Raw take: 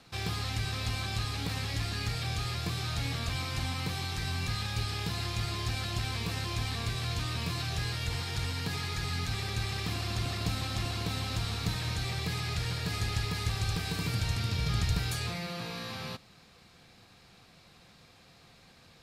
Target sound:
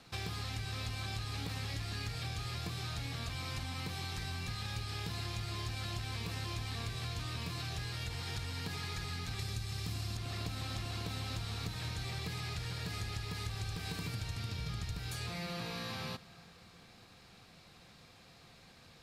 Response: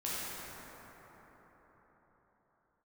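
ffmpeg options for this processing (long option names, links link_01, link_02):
-filter_complex "[0:a]asettb=1/sr,asplit=3[link_01][link_02][link_03];[link_01]atrim=end=9.394[link_04];[link_02]atrim=start=9.39:end=10.17,asetpts=PTS-STARTPTS,afade=type=in:duration=0.004:curve=qsin,afade=type=out:start_time=0.776:duration=0.004:curve=qsin,bass=frequency=250:gain=7,treble=frequency=4000:gain=8[link_05];[link_03]atrim=start=10.166[link_06];[link_04][link_05]acrossfade=duration=0.004:curve1=hsin:curve2=qsin[link_07];[link_07][link_06]acrossfade=duration=0.004:curve1=qsin:curve2=hsin,acompressor=threshold=-35dB:ratio=10,asplit=2[link_08][link_09];[1:a]atrim=start_sample=2205,adelay=115[link_10];[link_09][link_10]afir=irnorm=-1:irlink=0,volume=-24.5dB[link_11];[link_08][link_11]amix=inputs=2:normalize=0,volume=-1dB"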